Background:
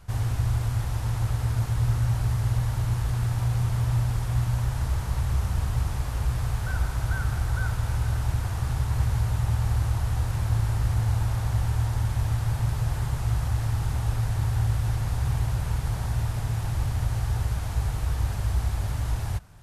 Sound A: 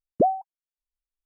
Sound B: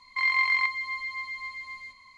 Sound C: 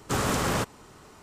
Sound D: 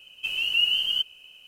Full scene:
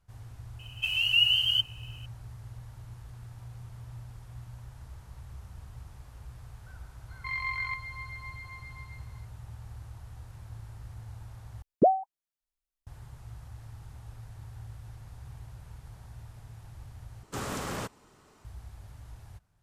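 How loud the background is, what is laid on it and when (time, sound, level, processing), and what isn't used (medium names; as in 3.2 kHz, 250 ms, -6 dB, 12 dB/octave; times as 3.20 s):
background -20 dB
0.59 s: add D -0.5 dB + brick-wall FIR high-pass 570 Hz
7.08 s: add B -6.5 dB + treble shelf 2.3 kHz -7 dB
11.62 s: replace with A -1 dB
17.23 s: replace with C -9 dB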